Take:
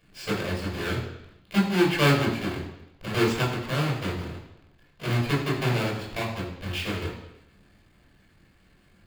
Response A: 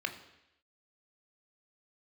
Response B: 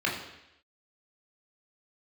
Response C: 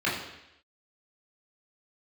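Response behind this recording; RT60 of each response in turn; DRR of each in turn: B; 0.85, 0.85, 0.85 s; 6.0, -3.5, -8.0 dB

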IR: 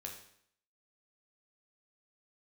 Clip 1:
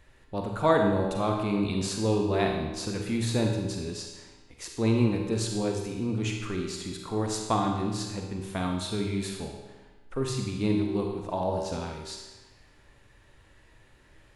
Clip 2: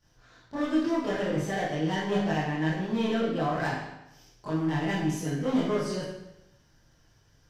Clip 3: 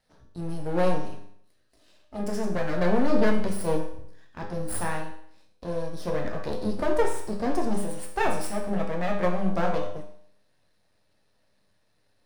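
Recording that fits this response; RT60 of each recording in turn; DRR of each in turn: 3; 1.2, 0.90, 0.65 s; 1.5, -12.5, 0.0 dB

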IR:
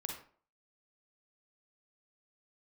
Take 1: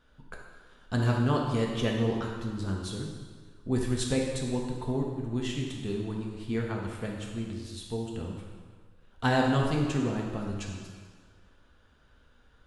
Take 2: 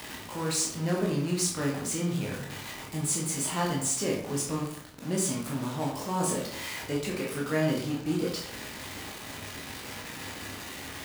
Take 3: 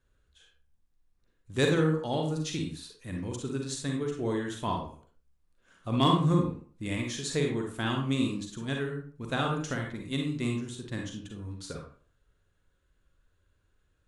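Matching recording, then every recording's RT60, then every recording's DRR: 3; 1.6, 0.65, 0.45 s; -1.5, -3.0, 1.0 dB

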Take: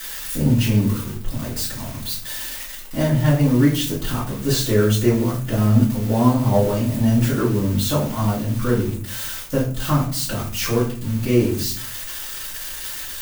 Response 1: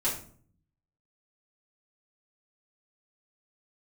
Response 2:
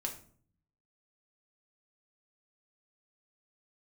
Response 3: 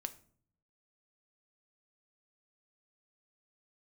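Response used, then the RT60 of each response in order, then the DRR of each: 1; 0.50, 0.50, 0.50 s; -9.5, 0.5, 8.5 dB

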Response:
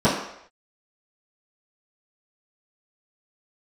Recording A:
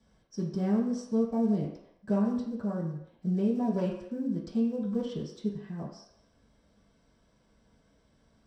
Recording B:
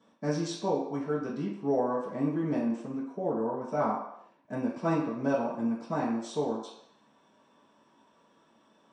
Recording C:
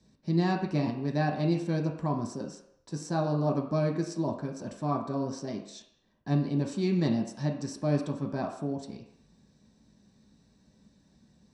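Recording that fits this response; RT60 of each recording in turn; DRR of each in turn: B; not exponential, not exponential, not exponential; -9.0, -14.5, -0.5 dB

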